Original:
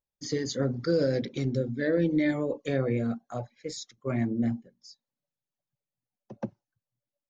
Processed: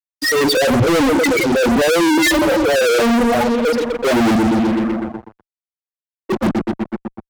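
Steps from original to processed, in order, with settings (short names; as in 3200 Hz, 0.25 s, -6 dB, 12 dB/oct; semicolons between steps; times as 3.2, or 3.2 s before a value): dynamic EQ 830 Hz, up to +7 dB, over -45 dBFS, Q 1.4; in parallel at +3 dB: negative-ratio compressor -32 dBFS, ratio -0.5; on the sum: LFO band-pass saw down 0.92 Hz 250–3000 Hz; hard clip -25.5 dBFS, distortion -12 dB; on a send: dark delay 0.123 s, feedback 70%, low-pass 2500 Hz, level -12 dB; on the sum: loudest bins only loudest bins 4; fuzz box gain 59 dB, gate -60 dBFS; three-band expander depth 70%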